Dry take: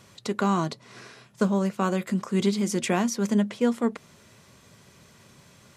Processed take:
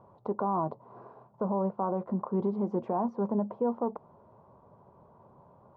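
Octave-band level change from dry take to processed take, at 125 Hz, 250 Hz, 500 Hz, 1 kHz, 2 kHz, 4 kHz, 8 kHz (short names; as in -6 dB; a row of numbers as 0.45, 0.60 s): -7.5 dB, -7.5 dB, -3.0 dB, -1.5 dB, under -20 dB, under -35 dB, under -40 dB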